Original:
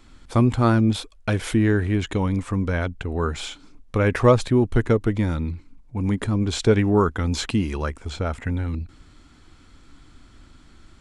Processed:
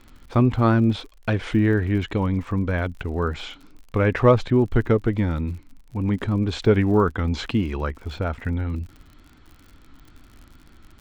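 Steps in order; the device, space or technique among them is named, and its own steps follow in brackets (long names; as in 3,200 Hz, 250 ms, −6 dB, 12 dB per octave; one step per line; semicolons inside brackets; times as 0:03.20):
lo-fi chain (low-pass filter 3,600 Hz 12 dB per octave; tape wow and flutter; surface crackle 59 per second −38 dBFS)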